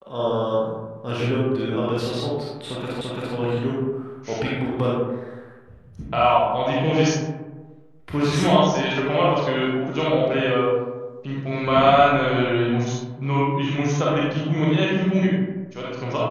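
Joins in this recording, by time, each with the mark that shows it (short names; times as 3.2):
3.01 repeat of the last 0.34 s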